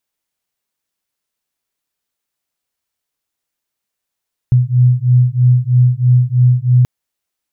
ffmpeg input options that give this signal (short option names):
-f lavfi -i "aevalsrc='0.282*(sin(2*PI*123*t)+sin(2*PI*126.1*t))':d=2.33:s=44100"